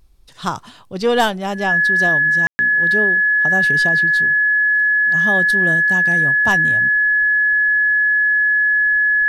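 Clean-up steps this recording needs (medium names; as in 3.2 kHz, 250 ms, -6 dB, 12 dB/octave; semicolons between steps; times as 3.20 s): clip repair -7 dBFS; band-stop 1.7 kHz, Q 30; room tone fill 2.47–2.59 s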